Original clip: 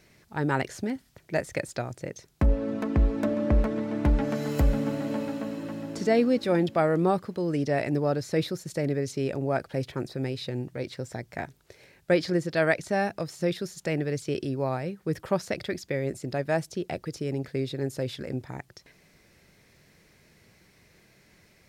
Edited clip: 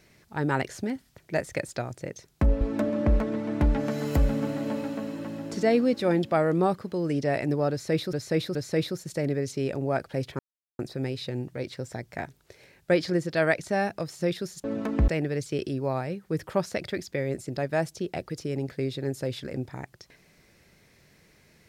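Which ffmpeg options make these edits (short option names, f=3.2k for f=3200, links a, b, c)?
-filter_complex "[0:a]asplit=7[a][b][c][d][e][f][g];[a]atrim=end=2.612[h];[b]atrim=start=3.048:end=8.572[i];[c]atrim=start=8.148:end=8.572[j];[d]atrim=start=8.148:end=9.99,asetpts=PTS-STARTPTS,afade=t=out:st=1.838:d=0.004:c=hsin,apad=pad_dur=0.4[k];[e]atrim=start=9.99:end=13.842,asetpts=PTS-STARTPTS,afade=t=in:d=0.004:c=hsin[l];[f]atrim=start=2.608:end=3.052[m];[g]atrim=start=13.838[n];[h][i]acrossfade=d=0.004:c1=hsin:c2=hsin[o];[o][j]acrossfade=d=0.004:c1=hsin:c2=hsin[p];[k][l]concat=n=2:v=0:a=1[q];[p][q]acrossfade=d=0.004:c1=hsin:c2=hsin[r];[r][m]acrossfade=d=0.004:c1=hsin:c2=hsin[s];[s][n]acrossfade=d=0.004:c1=hsin:c2=hsin"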